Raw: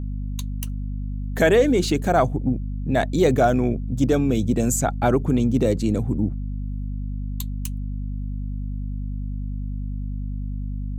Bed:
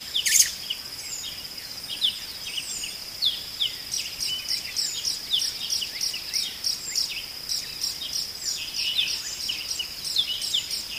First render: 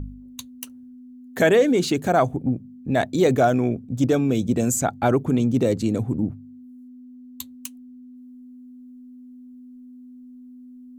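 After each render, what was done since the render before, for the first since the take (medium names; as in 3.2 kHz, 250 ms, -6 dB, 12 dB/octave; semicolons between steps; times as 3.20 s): de-hum 50 Hz, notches 4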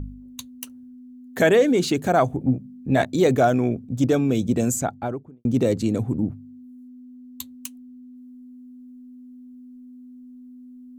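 2.37–3.05 s: doubling 15 ms -5.5 dB; 4.60–5.45 s: studio fade out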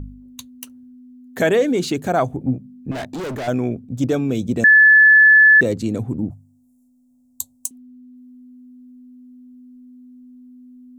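2.91–3.48 s: overload inside the chain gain 25.5 dB; 4.64–5.61 s: bleep 1.73 kHz -6.5 dBFS; 6.30–7.71 s: FFT filter 170 Hz 0 dB, 300 Hz -21 dB, 680 Hz +8 dB, 980 Hz 0 dB, 1.6 kHz -23 dB, 2.2 kHz -18 dB, 4.9 kHz +1 dB, 7.7 kHz +13 dB, 14 kHz +5 dB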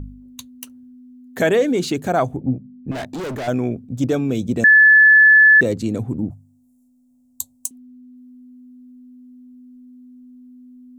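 2.40–2.88 s: low-pass 1.1 kHz 6 dB/octave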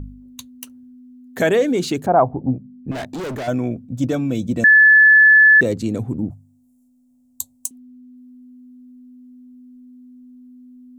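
2.06–2.52 s: resonant low-pass 950 Hz, resonance Q 2.3; 3.43–4.64 s: comb of notches 410 Hz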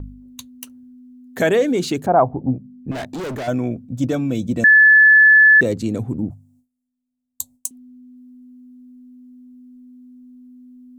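gate with hold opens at -50 dBFS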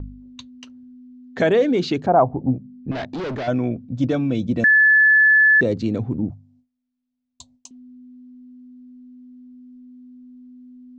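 inverse Chebyshev low-pass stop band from 11 kHz, stop band 50 dB; dynamic bell 2.1 kHz, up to -4 dB, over -24 dBFS, Q 0.76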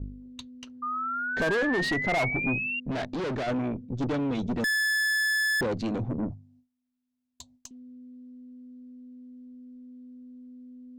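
valve stage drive 25 dB, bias 0.6; 0.82–2.80 s: painted sound rise 1.2–2.8 kHz -31 dBFS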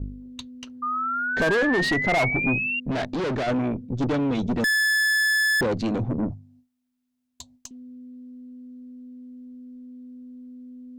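trim +4.5 dB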